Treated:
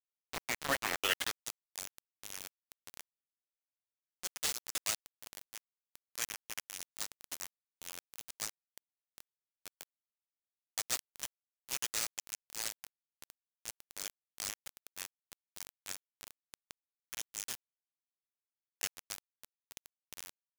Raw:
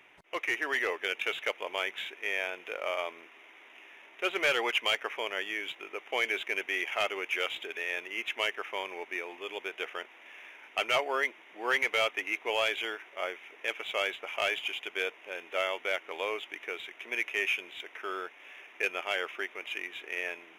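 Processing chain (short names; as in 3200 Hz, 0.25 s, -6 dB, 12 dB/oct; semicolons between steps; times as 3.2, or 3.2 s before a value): band-pass sweep 400 Hz -> 7500 Hz, 0.7–1.42; spectral gate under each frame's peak -15 dB weak; requantised 8-bit, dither none; gain +17.5 dB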